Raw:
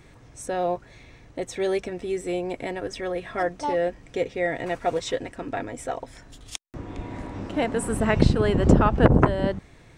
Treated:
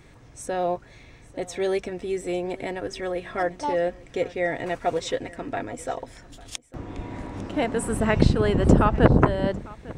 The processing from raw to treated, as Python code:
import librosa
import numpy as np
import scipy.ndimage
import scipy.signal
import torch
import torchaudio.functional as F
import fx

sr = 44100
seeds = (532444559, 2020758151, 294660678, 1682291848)

y = x + 10.0 ** (-21.0 / 20.0) * np.pad(x, (int(850 * sr / 1000.0), 0))[:len(x)]